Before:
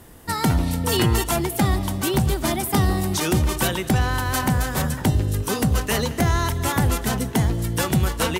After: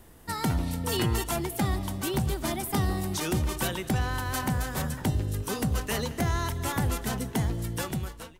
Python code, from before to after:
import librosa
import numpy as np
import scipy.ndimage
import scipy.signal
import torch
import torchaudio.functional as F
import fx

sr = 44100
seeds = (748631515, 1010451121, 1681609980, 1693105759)

y = fx.fade_out_tail(x, sr, length_s=0.72)
y = fx.dmg_noise_colour(y, sr, seeds[0], colour='brown', level_db=-48.0)
y = F.gain(torch.from_numpy(y), -7.5).numpy()